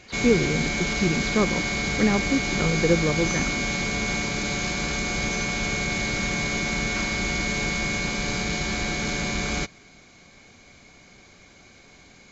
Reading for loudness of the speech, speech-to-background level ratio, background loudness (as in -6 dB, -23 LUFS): -25.5 LUFS, 0.0 dB, -25.5 LUFS